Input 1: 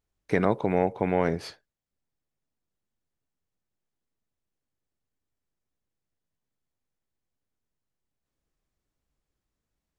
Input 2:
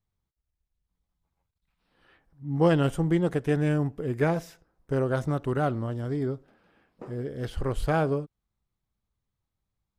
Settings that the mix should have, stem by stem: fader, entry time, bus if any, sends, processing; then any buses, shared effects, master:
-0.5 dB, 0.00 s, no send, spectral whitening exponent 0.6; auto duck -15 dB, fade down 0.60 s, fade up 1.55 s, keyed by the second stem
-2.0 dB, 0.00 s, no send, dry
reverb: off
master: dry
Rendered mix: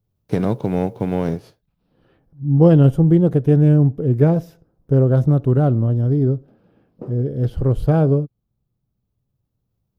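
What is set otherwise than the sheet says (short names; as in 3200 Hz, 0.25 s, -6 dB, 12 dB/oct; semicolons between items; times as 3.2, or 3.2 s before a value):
stem 2 -2.0 dB -> +4.0 dB; master: extra ten-band EQ 125 Hz +11 dB, 250 Hz +4 dB, 500 Hz +4 dB, 1000 Hz -4 dB, 2000 Hz -10 dB, 4000 Hz -3 dB, 8000 Hz -11 dB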